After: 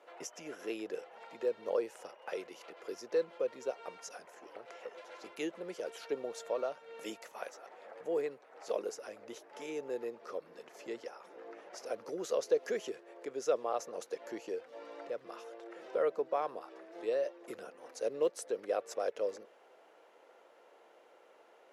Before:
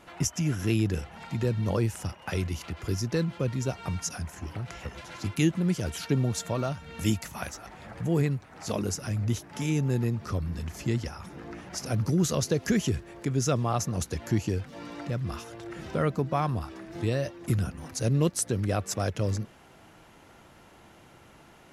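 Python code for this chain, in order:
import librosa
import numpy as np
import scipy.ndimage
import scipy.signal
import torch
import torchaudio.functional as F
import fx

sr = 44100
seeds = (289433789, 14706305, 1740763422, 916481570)

y = fx.ladder_highpass(x, sr, hz=430.0, resonance_pct=60)
y = fx.high_shelf(y, sr, hz=5400.0, db=-10.0)
y = F.gain(torch.from_numpy(y), 1.5).numpy()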